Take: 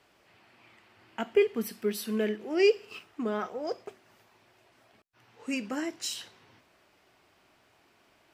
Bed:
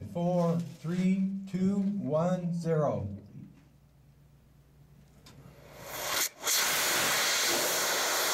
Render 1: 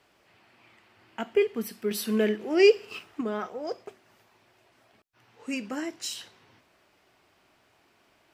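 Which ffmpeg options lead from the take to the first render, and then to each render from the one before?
-filter_complex "[0:a]asplit=3[a][b][c];[a]atrim=end=1.912[d];[b]atrim=start=1.908:end=3.212,asetpts=PTS-STARTPTS,volume=4.5dB[e];[c]atrim=start=3.208[f];[d][e]acrossfade=d=0.004:c1=hsin:c2=hsin[g];[g][f]acrossfade=d=0.004:c1=hsin:c2=hsin"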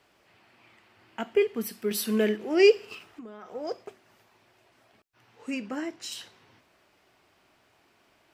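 -filter_complex "[0:a]asettb=1/sr,asplit=3[a][b][c];[a]atrim=end=1.604[d];[b]atrim=start=1.6:end=2.37,asetpts=PTS-STARTPTS,afade=t=in:d=0.004:c=qsin,afade=t=out:st=0.766:d=0.004:c=qsin,highshelf=f=5.7k:g=4[e];[c]atrim=start=2.366[f];[d][e]acrossfade=d=0.004:c1=hsin:c2=qsin[g];[g][f]acrossfade=d=0.004:c1=qsin:c2=hsin,asettb=1/sr,asplit=3[h][i][j];[h]atrim=end=2.944[k];[i]atrim=start=2.94:end=3.55,asetpts=PTS-STARTPTS,afade=t=in:d=0.004:c=qsin,afade=t=out:st=0.606:d=0.004:c=qsin,acompressor=threshold=-39dB:ratio=12:attack=3.2:release=140:knee=1:detection=peak[l];[j]atrim=start=3.546[m];[k][l]acrossfade=d=0.004:c1=hsin:c2=qsin[n];[n][m]acrossfade=d=0.004:c1=qsin:c2=hsin,asettb=1/sr,asplit=3[o][p][q];[o]atrim=end=5.504[r];[p]atrim=start=5.5:end=6.12,asetpts=PTS-STARTPTS,afade=t=in:d=0.004:c=qsin,afade=t=out:st=0.616:d=0.004:c=qsin,highshelf=f=5k:g=-8.5[s];[q]atrim=start=6.116[t];[r][s]acrossfade=d=0.004:c1=hsin:c2=qsin[u];[u][t]acrossfade=d=0.004:c1=qsin:c2=hsin"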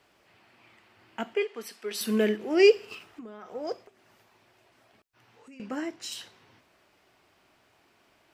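-filter_complex "[0:a]asettb=1/sr,asplit=3[a][b][c];[a]atrim=end=1.344[d];[b]atrim=start=1.34:end=2.01,asetpts=PTS-STARTPTS,afade=t=in:d=0.004:c=qsin,afade=t=out:st=0.666:d=0.004:c=qsin,highpass=520,lowpass=7.7k[e];[c]atrim=start=2.006[f];[d][e]acrossfade=d=0.004:c1=hsin:c2=qsin[g];[g][f]acrossfade=d=0.004:c1=qsin:c2=hsin,asettb=1/sr,asplit=3[h][i][j];[h]atrim=end=3.834[k];[i]atrim=start=3.83:end=5.6,asetpts=PTS-STARTPTS,afade=t=in:d=0.004:c=qsin,afade=t=out:st=1.766:d=0.004:c=qsin,acompressor=threshold=-54dB:ratio=3:attack=3.2:release=140:knee=1:detection=peak[l];[j]atrim=start=5.596[m];[k][l]acrossfade=d=0.004:c1=hsin:c2=qsin[n];[n][m]acrossfade=d=0.004:c1=qsin:c2=hsin"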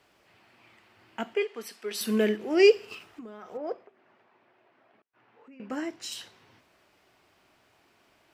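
-filter_complex "[0:a]asettb=1/sr,asplit=3[a][b][c];[a]atrim=end=3.574[d];[b]atrim=start=3.57:end=5.7,asetpts=PTS-STARTPTS,afade=t=in:d=0.004:c=qsin,afade=t=out:st=2.126:d=0.004:c=qsin,highpass=200,lowpass=2.1k[e];[c]atrim=start=5.696[f];[d][e]acrossfade=d=0.004:c1=hsin:c2=qsin[g];[g][f]acrossfade=d=0.004:c1=qsin:c2=hsin"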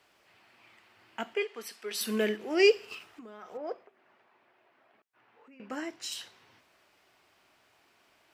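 -af "lowshelf=f=490:g=-7"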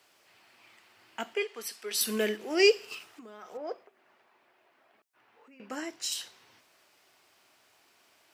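-af "highpass=72,bass=f=250:g=-3,treble=f=4k:g=7"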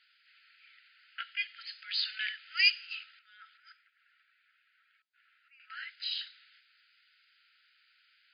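-af "afftfilt=real='re*between(b*sr/4096,1300,5000)':imag='im*between(b*sr/4096,1300,5000)':win_size=4096:overlap=0.75,adynamicequalizer=threshold=0.00447:dfrequency=2200:dqfactor=0.7:tfrequency=2200:tqfactor=0.7:attack=5:release=100:ratio=0.375:range=1.5:mode=boostabove:tftype=highshelf"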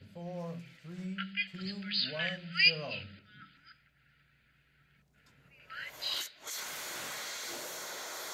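-filter_complex "[1:a]volume=-13dB[a];[0:a][a]amix=inputs=2:normalize=0"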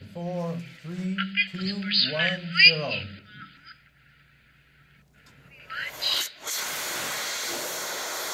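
-af "volume=10dB,alimiter=limit=-3dB:level=0:latency=1"

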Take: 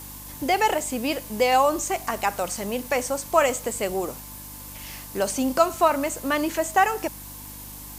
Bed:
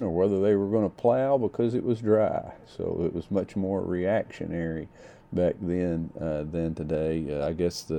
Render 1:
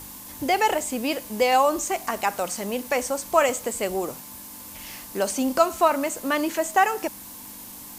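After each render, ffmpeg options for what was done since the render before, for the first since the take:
-af "bandreject=f=50:t=h:w=4,bandreject=f=100:t=h:w=4,bandreject=f=150:t=h:w=4"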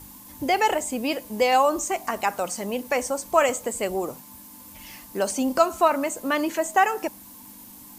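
-af "afftdn=nr=7:nf=-41"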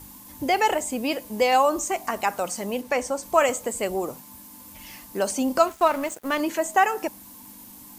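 -filter_complex "[0:a]asettb=1/sr,asplit=3[a][b][c];[a]atrim=end=2.814[d];[b]atrim=start=2.81:end=3.23,asetpts=PTS-STARTPTS,afade=t=in:d=0.004:c=qsin,afade=t=out:st=0.416:d=0.004:c=qsin,highshelf=f=9.6k:g=-9.5[e];[c]atrim=start=3.226[f];[d][e]acrossfade=d=0.004:c1=hsin:c2=qsin[g];[g][f]acrossfade=d=0.004:c1=qsin:c2=hsin,asettb=1/sr,asplit=3[h][i][j];[h]atrim=end=5.674[k];[i]atrim=start=5.67:end=6.4,asetpts=PTS-STARTPTS,afade=t=in:d=0.004:c=qsin,afade=t=out:st=0.726:d=0.004:c=qsin,aeval=exprs='sgn(val(0))*max(abs(val(0))-0.0141,0)':c=same[l];[j]atrim=start=6.396[m];[k][l]acrossfade=d=0.004:c1=hsin:c2=qsin[n];[n][m]acrossfade=d=0.004:c1=qsin:c2=hsin"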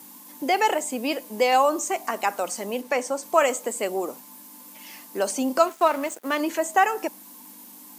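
-af "highpass=f=220:w=0.5412,highpass=f=220:w=1.3066"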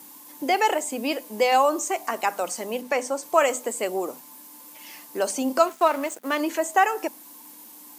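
-af "bandreject=f=50:t=h:w=6,bandreject=f=100:t=h:w=6,bandreject=f=150:t=h:w=6,bandreject=f=200:t=h:w=6,bandreject=f=250:t=h:w=6"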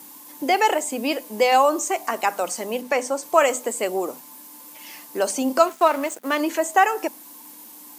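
-af "volume=2.5dB"

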